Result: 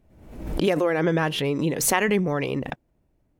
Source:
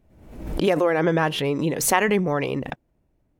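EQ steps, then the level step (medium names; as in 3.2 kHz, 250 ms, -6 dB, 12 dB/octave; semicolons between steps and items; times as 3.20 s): dynamic bell 860 Hz, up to -4 dB, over -29 dBFS, Q 0.79; 0.0 dB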